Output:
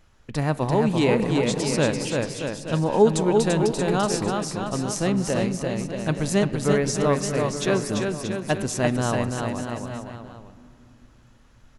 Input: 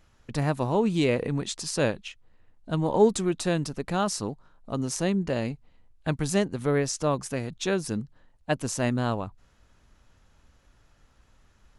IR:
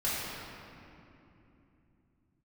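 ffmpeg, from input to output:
-filter_complex "[0:a]aecho=1:1:340|629|874.6|1083|1261:0.631|0.398|0.251|0.158|0.1,asplit=2[a][b];[1:a]atrim=start_sample=2205,lowpass=4.8k[c];[b][c]afir=irnorm=-1:irlink=0,volume=-22.5dB[d];[a][d]amix=inputs=2:normalize=0,volume=2dB"

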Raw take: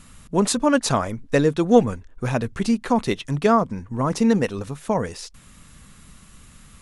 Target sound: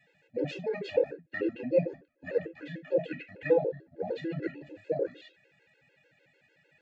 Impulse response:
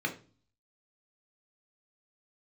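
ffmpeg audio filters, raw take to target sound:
-filter_complex "[0:a]asetrate=32097,aresample=44100,atempo=1.37395,asplit=3[a][b][c];[a]bandpass=f=530:t=q:w=8,volume=0dB[d];[b]bandpass=f=1.84k:t=q:w=8,volume=-6dB[e];[c]bandpass=f=2.48k:t=q:w=8,volume=-9dB[f];[d][e][f]amix=inputs=3:normalize=0[g];[1:a]atrim=start_sample=2205,atrim=end_sample=4410[h];[g][h]afir=irnorm=-1:irlink=0,afftfilt=real='re*gt(sin(2*PI*6.7*pts/sr)*(1-2*mod(floor(b*sr/1024/280),2)),0)':imag='im*gt(sin(2*PI*6.7*pts/sr)*(1-2*mod(floor(b*sr/1024/280),2)),0)':win_size=1024:overlap=0.75"

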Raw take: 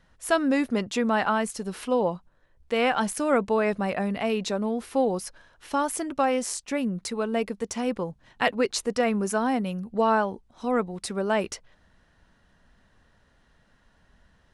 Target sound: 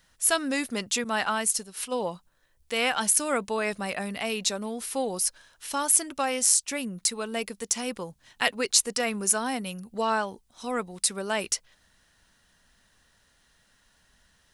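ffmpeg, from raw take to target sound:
-filter_complex "[0:a]crystalizer=i=7.5:c=0,asettb=1/sr,asplit=3[a][b][c];[a]atrim=end=1.044[d];[b]atrim=start=1.04:end=1.97,asetpts=PTS-STARTPTS,afade=t=in:d=0.004:c=qsin,afade=t=out:st=0.926:d=0.004:c=qsin,agate=range=-33dB:threshold=-21dB:ratio=3:detection=peak[e];[c]atrim=start=1.966[f];[d][e]acrossfade=d=0.004:c1=hsin:c2=qsin[g];[g][f]acrossfade=d=0.004:c1=qsin:c2=hsin,volume=-7dB"

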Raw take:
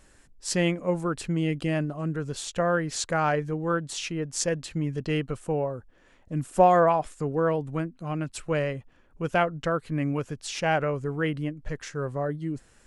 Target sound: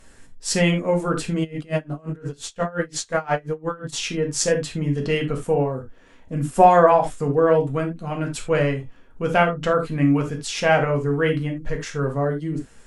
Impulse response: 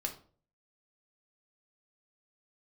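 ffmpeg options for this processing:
-filter_complex "[1:a]atrim=start_sample=2205,atrim=end_sample=3087,asetrate=33075,aresample=44100[a];[0:a][a]afir=irnorm=-1:irlink=0,asplit=3[b][c][d];[b]afade=t=out:st=1.43:d=0.02[e];[c]aeval=exprs='val(0)*pow(10,-25*(0.5-0.5*cos(2*PI*5.7*n/s))/20)':c=same,afade=t=in:st=1.43:d=0.02,afade=t=out:st=3.92:d=0.02[f];[d]afade=t=in:st=3.92:d=0.02[g];[e][f][g]amix=inputs=3:normalize=0,volume=4dB"

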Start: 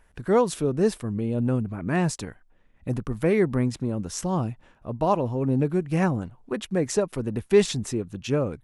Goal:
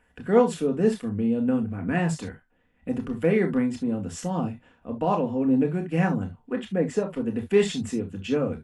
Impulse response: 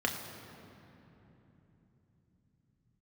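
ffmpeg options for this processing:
-filter_complex "[0:a]asettb=1/sr,asplit=3[a][b][c];[a]atrim=end=6.534[d];[b]atrim=start=6.53:end=7.26,asetpts=PTS-STARTPTS,afade=t=in:d=0.004:c=qsin,afade=t=out:st=0.726:d=0.004:c=qsin,highshelf=f=3.2k:g=-9[e];[c]atrim=start=7.256[f];[d][e]acrossfade=d=0.004:c1=hsin:c2=qsin[g];[g][f]acrossfade=d=0.004:c1=qsin:c2=hsin[h];[1:a]atrim=start_sample=2205,atrim=end_sample=3528[i];[h][i]afir=irnorm=-1:irlink=0,volume=-7dB"

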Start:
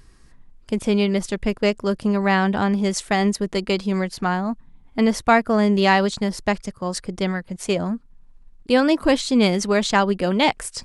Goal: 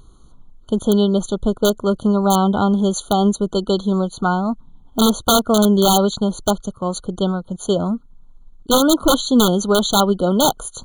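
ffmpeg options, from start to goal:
-af "aeval=exprs='(mod(2.82*val(0)+1,2)-1)/2.82':c=same,afftfilt=real='re*eq(mod(floor(b*sr/1024/1500),2),0)':imag='im*eq(mod(floor(b*sr/1024/1500),2),0)':win_size=1024:overlap=0.75,volume=4dB"

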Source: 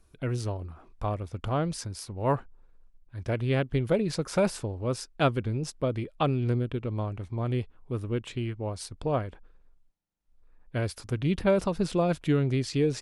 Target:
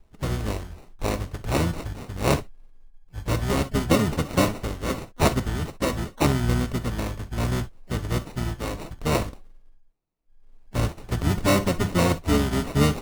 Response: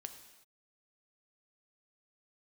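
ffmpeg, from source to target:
-filter_complex "[0:a]acrusher=samples=27:mix=1:aa=0.000001[a];[1:a]atrim=start_sample=2205,atrim=end_sample=3087[b];[a][b]afir=irnorm=-1:irlink=0,asplit=4[c][d][e][f];[d]asetrate=22050,aresample=44100,atempo=2,volume=0dB[g];[e]asetrate=29433,aresample=44100,atempo=1.49831,volume=-6dB[h];[f]asetrate=66075,aresample=44100,atempo=0.66742,volume=-18dB[i];[c][g][h][i]amix=inputs=4:normalize=0,volume=5.5dB"

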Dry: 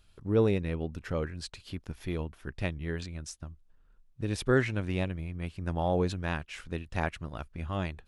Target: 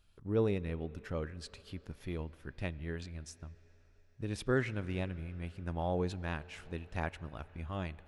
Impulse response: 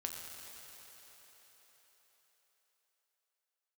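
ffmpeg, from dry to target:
-filter_complex "[0:a]asplit=2[a][b];[1:a]atrim=start_sample=2205,lowpass=4.1k[c];[b][c]afir=irnorm=-1:irlink=0,volume=-13dB[d];[a][d]amix=inputs=2:normalize=0,volume=-7dB"

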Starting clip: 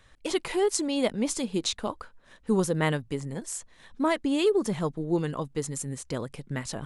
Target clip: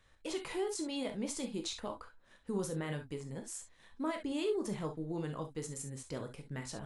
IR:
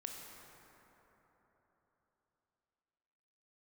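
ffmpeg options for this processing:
-filter_complex "[0:a]alimiter=limit=-19.5dB:level=0:latency=1:release=23[a];[1:a]atrim=start_sample=2205,atrim=end_sample=6174,asetrate=83790,aresample=44100[b];[a][b]afir=irnorm=-1:irlink=0,volume=1dB"

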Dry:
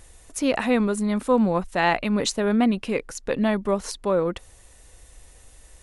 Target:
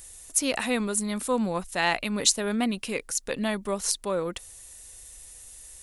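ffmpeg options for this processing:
-af "crystalizer=i=5:c=0,volume=-7dB"

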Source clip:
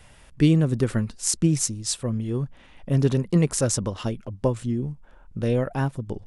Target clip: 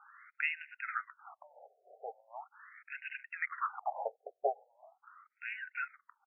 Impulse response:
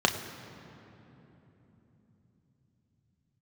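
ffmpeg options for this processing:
-af "highpass=f=580:t=q:w=0.5412,highpass=f=580:t=q:w=1.307,lowpass=f=2.9k:t=q:w=0.5176,lowpass=f=2.9k:t=q:w=0.7071,lowpass=f=2.9k:t=q:w=1.932,afreqshift=-230,aecho=1:1:1.5:0.33,afftfilt=real='re*between(b*sr/1024,540*pow(2100/540,0.5+0.5*sin(2*PI*0.4*pts/sr))/1.41,540*pow(2100/540,0.5+0.5*sin(2*PI*0.4*pts/sr))*1.41)':imag='im*between(b*sr/1024,540*pow(2100/540,0.5+0.5*sin(2*PI*0.4*pts/sr))/1.41,540*pow(2100/540,0.5+0.5*sin(2*PI*0.4*pts/sr))*1.41)':win_size=1024:overlap=0.75,volume=4dB"

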